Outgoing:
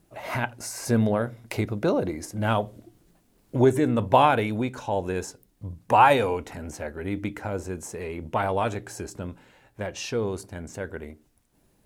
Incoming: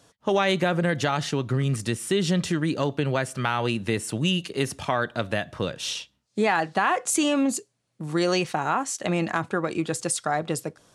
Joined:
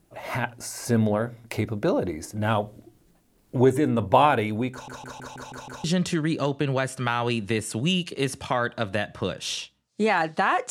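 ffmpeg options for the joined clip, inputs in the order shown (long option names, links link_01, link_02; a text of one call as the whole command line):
ffmpeg -i cue0.wav -i cue1.wav -filter_complex "[0:a]apad=whole_dur=10.7,atrim=end=10.7,asplit=7[link_01][link_02][link_03][link_04][link_05][link_06][link_07];[link_01]atrim=end=4.882[link_08];[link_02]atrim=start=4.718:end=4.882[link_09];[link_03]atrim=start=4.718:end=4.882[link_10];[link_04]atrim=start=4.718:end=4.882[link_11];[link_05]atrim=start=4.718:end=4.882[link_12];[link_06]atrim=start=4.718:end=4.882[link_13];[link_07]atrim=start=4.718:end=4.882[link_14];[1:a]atrim=start=2.218:end=7.08[link_15];[link_08][link_09]acrossfade=duration=0.004:curve1=hsin:curve2=hsin[link_16];[link_16][link_10]acrossfade=duration=0.004:curve1=hsin:curve2=hsin[link_17];[link_17][link_11]acrossfade=duration=0.004:curve1=hsin:curve2=hsin[link_18];[link_18][link_12]acrossfade=duration=0.004:curve1=hsin:curve2=hsin[link_19];[link_19][link_13]acrossfade=duration=0.004:curve1=hsin:curve2=hsin[link_20];[link_20][link_14]acrossfade=duration=0.004:curve1=hsin:curve2=hsin[link_21];[link_21][link_15]acrossfade=duration=0.004:curve1=hsin:curve2=hsin" out.wav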